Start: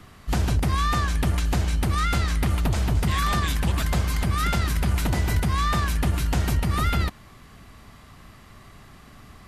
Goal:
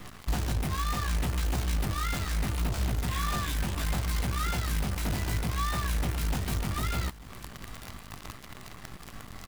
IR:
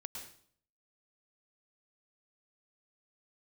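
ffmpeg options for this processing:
-filter_complex "[0:a]acompressor=threshold=-33dB:ratio=8,flanger=delay=16:depth=4.6:speed=0.69,acrusher=bits=8:dc=4:mix=0:aa=0.000001,asplit=2[link_01][link_02];[link_02]aecho=0:1:893:0.0944[link_03];[link_01][link_03]amix=inputs=2:normalize=0,volume=8dB"

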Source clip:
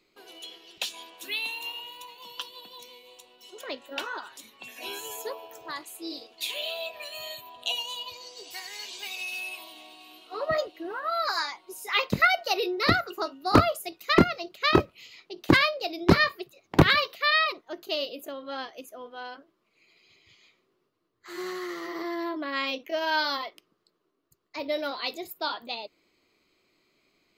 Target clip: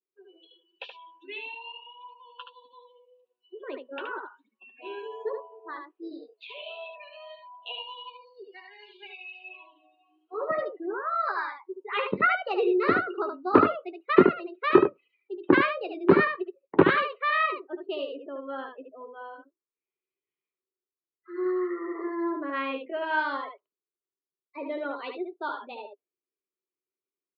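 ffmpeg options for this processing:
ffmpeg -i in.wav -af "afftdn=noise_reduction=31:noise_floor=-38,highpass=250,equalizer=frequency=400:width_type=q:width=4:gain=8,equalizer=frequency=690:width_type=q:width=4:gain=-8,equalizer=frequency=2100:width_type=q:width=4:gain=-7,lowpass=frequency=2400:width=0.5412,lowpass=frequency=2400:width=1.3066,aecho=1:1:11|74:0.335|0.531" out.wav

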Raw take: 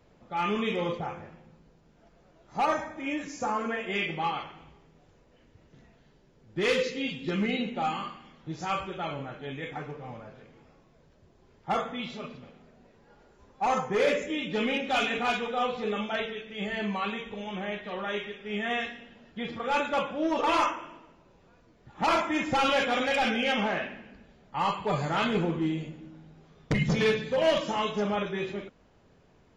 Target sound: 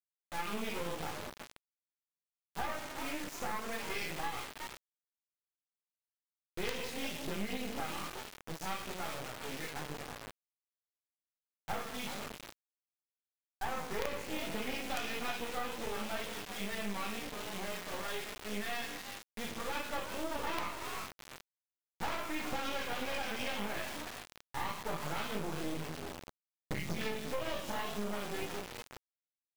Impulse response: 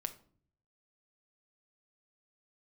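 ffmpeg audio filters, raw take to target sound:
-filter_complex "[0:a]bandreject=frequency=60:width_type=h:width=6,bandreject=frequency=120:width_type=h:width=6,bandreject=frequency=180:width_type=h:width=6,bandreject=frequency=240:width_type=h:width=6,bandreject=frequency=300:width_type=h:width=6,bandreject=frequency=360:width_type=h:width=6,bandreject=frequency=420:width_type=h:width=6,flanger=delay=16.5:depth=3.4:speed=0.45,asplit=5[link_01][link_02][link_03][link_04][link_05];[link_02]adelay=367,afreqshift=89,volume=-13dB[link_06];[link_03]adelay=734,afreqshift=178,volume=-21.9dB[link_07];[link_04]adelay=1101,afreqshift=267,volume=-30.7dB[link_08];[link_05]adelay=1468,afreqshift=356,volume=-39.6dB[link_09];[link_01][link_06][link_07][link_08][link_09]amix=inputs=5:normalize=0,acrusher=bits=4:dc=4:mix=0:aa=0.000001,acompressor=threshold=-33dB:ratio=5,volume=1dB"

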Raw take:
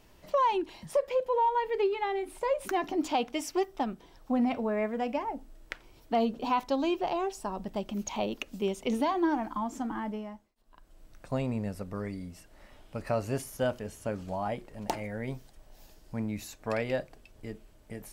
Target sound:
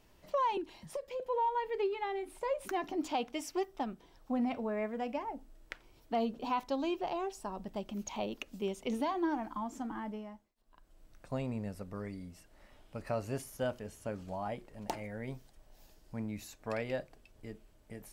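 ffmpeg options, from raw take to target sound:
ffmpeg -i in.wav -filter_complex "[0:a]asettb=1/sr,asplit=3[link_01][link_02][link_03];[link_01]atrim=end=0.574[link_04];[link_02]atrim=start=0.57:end=1.2,asetpts=PTS-STARTPTS,afade=type=in:duration=0.004:curve=qsin,afade=type=out:start_time=0.626:duration=0.004:curve=qsin,acrossover=split=370|3000[link_05][link_06][link_07];[link_06]acompressor=threshold=-36dB:ratio=6[link_08];[link_05][link_08][link_07]amix=inputs=3:normalize=0[link_09];[link_03]atrim=start=1.196[link_10];[link_04][link_09]acrossfade=duration=0.004:curve1=hsin:curve2=qsin[link_11];[link_11][link_10]acrossfade=duration=0.004:curve1=qsin:curve2=hsin,volume=-5.5dB" out.wav

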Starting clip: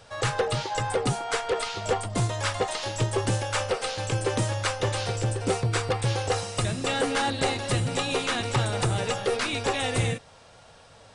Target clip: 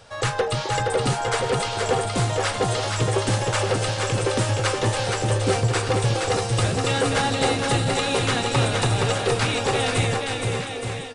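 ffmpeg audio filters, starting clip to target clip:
ffmpeg -i in.wav -af "aecho=1:1:470|869.5|1209|1498|1743:0.631|0.398|0.251|0.158|0.1,volume=2.5dB" out.wav

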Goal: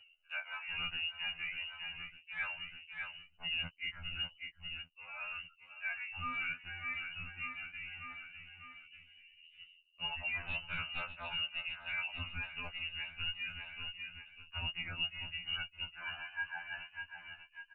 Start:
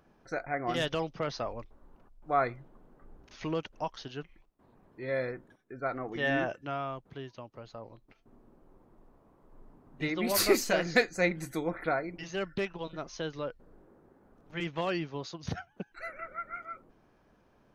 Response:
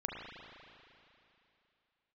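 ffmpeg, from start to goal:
-filter_complex "[0:a]agate=range=-7dB:threshold=-50dB:ratio=16:detection=peak,lowpass=frequency=2600:width_type=q:width=0.5098,lowpass=frequency=2600:width_type=q:width=0.6013,lowpass=frequency=2600:width_type=q:width=0.9,lowpass=frequency=2600:width_type=q:width=2.563,afreqshift=-3000,aresample=8000,asoftclip=type=hard:threshold=-20dB,aresample=44100,aecho=1:1:598|1196|1794|2392:0.158|0.0745|0.035|0.0165,areverse,acompressor=threshold=-48dB:ratio=4,areverse,asubboost=boost=10.5:cutoff=150,anlmdn=0.0000158,acompressor=mode=upward:threshold=-57dB:ratio=2.5,asplit=2[link_01][link_02];[link_02]adelay=13,volume=-3dB[link_03];[link_01][link_03]amix=inputs=2:normalize=0,afftfilt=real='re*2*eq(mod(b,4),0)':imag='im*2*eq(mod(b,4),0)':win_size=2048:overlap=0.75,volume=8.5dB"

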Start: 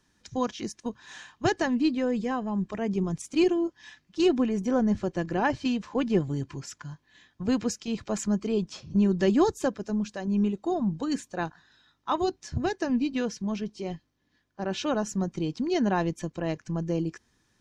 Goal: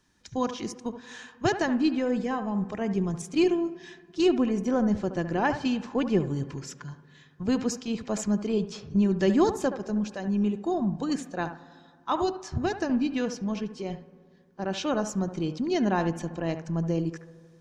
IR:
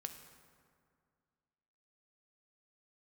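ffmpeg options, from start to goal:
-filter_complex "[0:a]asplit=2[link_01][link_02];[link_02]lowpass=1900[link_03];[1:a]atrim=start_sample=2205,lowshelf=frequency=450:gain=-6.5,adelay=72[link_04];[link_03][link_04]afir=irnorm=-1:irlink=0,volume=-4dB[link_05];[link_01][link_05]amix=inputs=2:normalize=0"

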